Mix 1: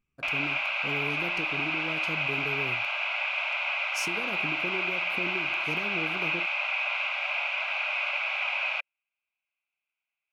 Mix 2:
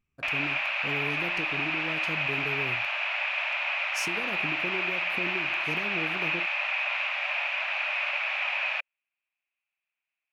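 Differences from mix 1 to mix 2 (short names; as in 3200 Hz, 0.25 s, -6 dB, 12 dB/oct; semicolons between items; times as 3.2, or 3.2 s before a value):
speech: add bell 90 Hz +13 dB 0.25 oct; background: remove Butterworth band-stop 1800 Hz, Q 5.6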